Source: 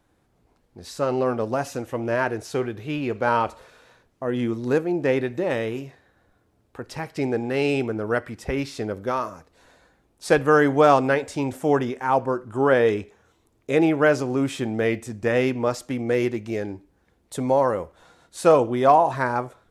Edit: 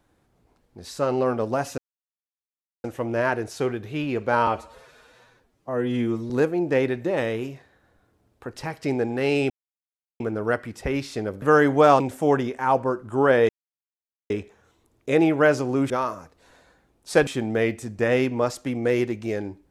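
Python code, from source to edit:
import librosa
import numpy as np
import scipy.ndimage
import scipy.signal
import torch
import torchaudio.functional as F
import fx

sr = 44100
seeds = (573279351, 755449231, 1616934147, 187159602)

y = fx.edit(x, sr, fx.insert_silence(at_s=1.78, length_s=1.06),
    fx.stretch_span(start_s=3.41, length_s=1.22, factor=1.5),
    fx.insert_silence(at_s=7.83, length_s=0.7),
    fx.move(start_s=9.05, length_s=1.37, to_s=14.51),
    fx.cut(start_s=11.0, length_s=0.42),
    fx.insert_silence(at_s=12.91, length_s=0.81), tone=tone)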